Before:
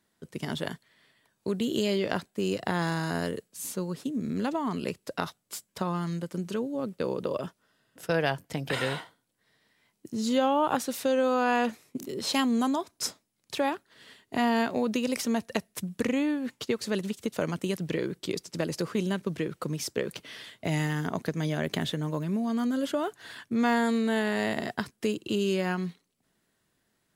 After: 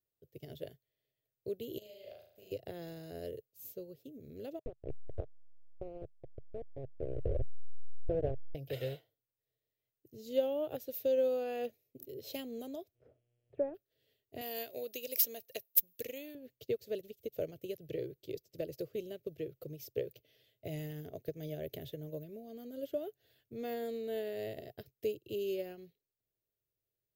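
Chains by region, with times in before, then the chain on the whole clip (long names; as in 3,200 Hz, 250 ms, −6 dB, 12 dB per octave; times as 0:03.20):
0:01.78–0:02.52: low shelf with overshoot 530 Hz −7.5 dB, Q 3 + downward compressor 16 to 1, threshold −35 dBFS + flutter between parallel walls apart 6.5 metres, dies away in 0.84 s
0:04.59–0:08.55: hold until the input has moved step −22 dBFS + low-pass filter 1,100 Hz
0:12.94–0:13.74: mu-law and A-law mismatch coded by mu + low-pass filter 1,500 Hz 24 dB per octave + hum with harmonics 120 Hz, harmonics 28, −64 dBFS
0:14.41–0:16.35: spectral tilt +3.5 dB per octave + hard clipping −10 dBFS
whole clip: drawn EQ curve 130 Hz 0 dB, 190 Hz −20 dB, 430 Hz −2 dB, 630 Hz −4 dB, 970 Hz −30 dB, 2,700 Hz −11 dB, 6,500 Hz −13 dB, 9,300 Hz −20 dB, 14,000 Hz +9 dB; expander for the loud parts 1.5 to 1, over −55 dBFS; level +1.5 dB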